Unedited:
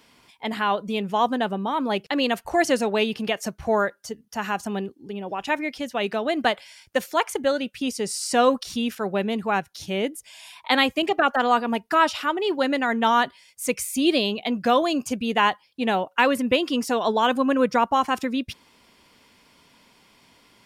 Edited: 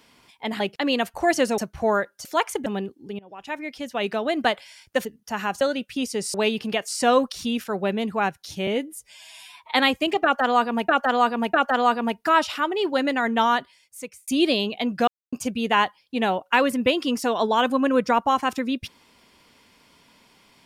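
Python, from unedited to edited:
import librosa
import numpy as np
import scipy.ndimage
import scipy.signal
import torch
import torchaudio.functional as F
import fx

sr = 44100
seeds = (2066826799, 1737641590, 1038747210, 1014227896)

y = fx.edit(x, sr, fx.cut(start_s=0.6, length_s=1.31),
    fx.move(start_s=2.89, length_s=0.54, to_s=8.19),
    fx.swap(start_s=4.1, length_s=0.56, other_s=7.05, other_length_s=0.41),
    fx.fade_in_from(start_s=5.19, length_s=0.87, floor_db=-19.5),
    fx.stretch_span(start_s=9.98, length_s=0.71, factor=1.5),
    fx.repeat(start_s=11.19, length_s=0.65, count=3),
    fx.fade_out_span(start_s=13.05, length_s=0.88),
    fx.silence(start_s=14.73, length_s=0.25), tone=tone)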